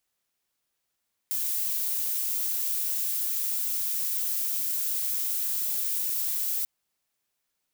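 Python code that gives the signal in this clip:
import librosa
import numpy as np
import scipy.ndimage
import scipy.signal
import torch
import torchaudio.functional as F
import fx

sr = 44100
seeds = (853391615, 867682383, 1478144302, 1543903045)

y = fx.noise_colour(sr, seeds[0], length_s=5.34, colour='violet', level_db=-28.5)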